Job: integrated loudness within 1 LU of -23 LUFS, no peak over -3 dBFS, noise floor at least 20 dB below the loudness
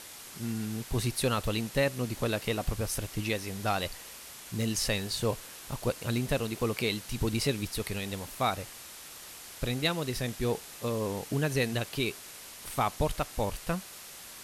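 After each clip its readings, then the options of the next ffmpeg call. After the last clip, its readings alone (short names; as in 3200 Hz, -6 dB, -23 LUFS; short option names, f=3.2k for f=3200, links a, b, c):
noise floor -47 dBFS; noise floor target -52 dBFS; loudness -32.0 LUFS; peak -14.5 dBFS; loudness target -23.0 LUFS
-> -af "afftdn=nr=6:nf=-47"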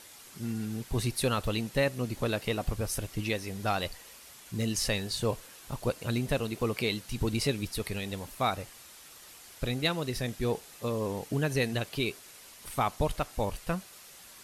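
noise floor -52 dBFS; loudness -32.0 LUFS; peak -15.0 dBFS; loudness target -23.0 LUFS
-> -af "volume=9dB"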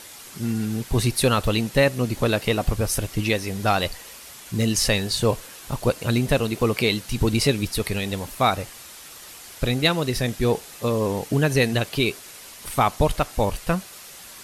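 loudness -23.0 LUFS; peak -6.0 dBFS; noise floor -43 dBFS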